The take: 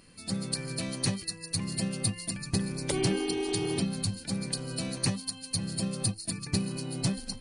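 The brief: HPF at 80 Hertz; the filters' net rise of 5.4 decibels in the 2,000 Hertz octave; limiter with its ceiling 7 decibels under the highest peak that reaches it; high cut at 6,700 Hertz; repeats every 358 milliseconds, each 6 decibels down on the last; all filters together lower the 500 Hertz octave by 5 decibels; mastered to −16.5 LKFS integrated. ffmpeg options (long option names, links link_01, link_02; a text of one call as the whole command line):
ffmpeg -i in.wav -af "highpass=80,lowpass=6700,equalizer=frequency=500:width_type=o:gain=-7.5,equalizer=frequency=2000:width_type=o:gain=7,alimiter=limit=-22.5dB:level=0:latency=1,aecho=1:1:358|716|1074|1432|1790|2148:0.501|0.251|0.125|0.0626|0.0313|0.0157,volume=17dB" out.wav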